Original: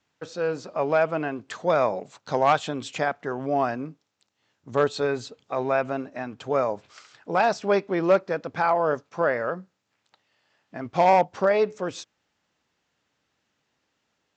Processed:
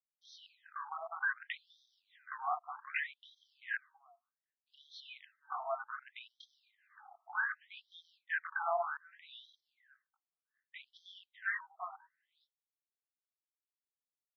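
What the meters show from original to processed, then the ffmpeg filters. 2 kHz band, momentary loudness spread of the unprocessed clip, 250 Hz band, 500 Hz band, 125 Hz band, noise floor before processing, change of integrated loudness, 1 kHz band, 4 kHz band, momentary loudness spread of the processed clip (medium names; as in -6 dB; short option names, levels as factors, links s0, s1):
-6.5 dB, 13 LU, under -40 dB, -25.0 dB, under -40 dB, -76 dBFS, -14.5 dB, -16.5 dB, -13.0 dB, 20 LU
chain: -filter_complex "[0:a]flanger=delay=18:depth=7.3:speed=0.87,superequalizer=6b=0.562:8b=1.58:9b=0.501:11b=3.16:13b=2,asplit=2[s0][s1];[s1]aecho=0:1:417:0.0668[s2];[s0][s2]amix=inputs=2:normalize=0,agate=range=0.0224:threshold=0.00178:ratio=3:detection=peak,acrusher=bits=6:mode=log:mix=0:aa=0.000001,acompressor=threshold=0.0355:ratio=3,afwtdn=0.0141,alimiter=level_in=1.41:limit=0.0631:level=0:latency=1:release=85,volume=0.708,equalizer=f=69:w=3.5:g=-9,afftfilt=real='re*between(b*sr/1024,940*pow(4500/940,0.5+0.5*sin(2*PI*0.65*pts/sr))/1.41,940*pow(4500/940,0.5+0.5*sin(2*PI*0.65*pts/sr))*1.41)':imag='im*between(b*sr/1024,940*pow(4500/940,0.5+0.5*sin(2*PI*0.65*pts/sr))/1.41,940*pow(4500/940,0.5+0.5*sin(2*PI*0.65*pts/sr))*1.41)':win_size=1024:overlap=0.75,volume=2.11"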